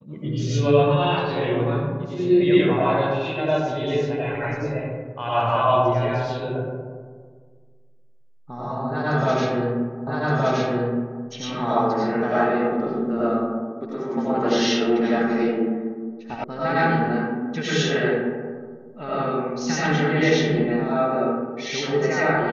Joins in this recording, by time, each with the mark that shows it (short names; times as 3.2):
10.07 repeat of the last 1.17 s
16.44 sound cut off